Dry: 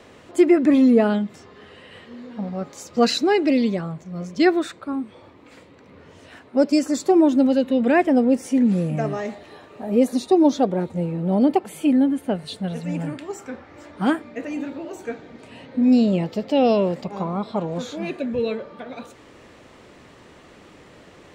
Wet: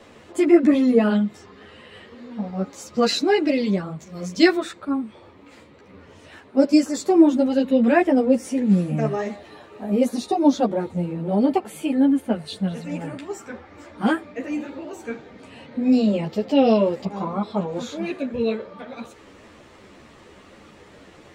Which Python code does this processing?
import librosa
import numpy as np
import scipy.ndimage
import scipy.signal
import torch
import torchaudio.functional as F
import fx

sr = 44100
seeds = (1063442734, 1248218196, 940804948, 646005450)

y = fx.high_shelf(x, sr, hz=fx.line((3.99, 2800.0), (4.55, 3800.0)), db=11.5, at=(3.99, 4.55), fade=0.02)
y = fx.ensemble(y, sr)
y = y * 10.0 ** (3.0 / 20.0)